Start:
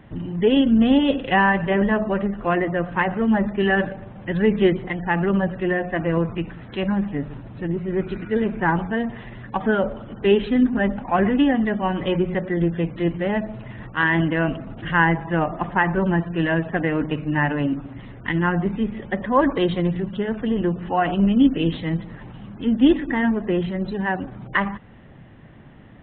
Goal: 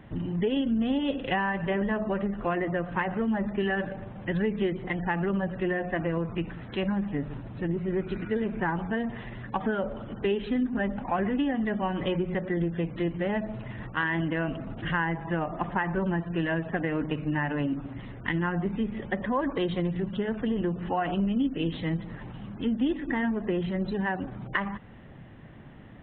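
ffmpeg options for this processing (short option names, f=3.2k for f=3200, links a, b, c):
-af "acompressor=threshold=-23dB:ratio=4,volume=-2dB"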